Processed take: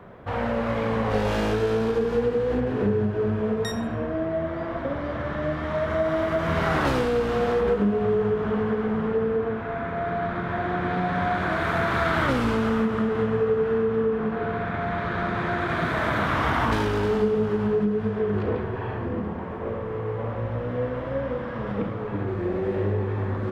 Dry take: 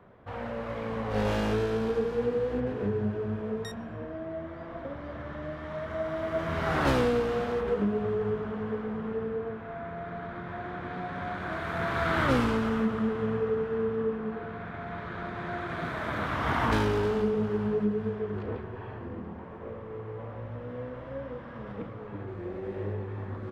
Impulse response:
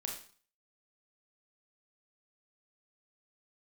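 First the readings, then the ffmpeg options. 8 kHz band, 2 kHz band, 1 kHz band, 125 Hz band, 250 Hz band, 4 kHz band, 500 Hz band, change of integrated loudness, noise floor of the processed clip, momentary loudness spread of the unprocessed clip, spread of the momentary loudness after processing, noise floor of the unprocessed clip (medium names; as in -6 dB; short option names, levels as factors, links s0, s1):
no reading, +6.5 dB, +6.5 dB, +6.5 dB, +5.5 dB, +5.0 dB, +6.5 dB, +6.0 dB, -31 dBFS, 13 LU, 7 LU, -41 dBFS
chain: -filter_complex "[0:a]acompressor=threshold=0.0316:ratio=6,asplit=2[s0][s1];[1:a]atrim=start_sample=2205,asetrate=34398,aresample=44100[s2];[s1][s2]afir=irnorm=-1:irlink=0,volume=0.473[s3];[s0][s3]amix=inputs=2:normalize=0,volume=2.24"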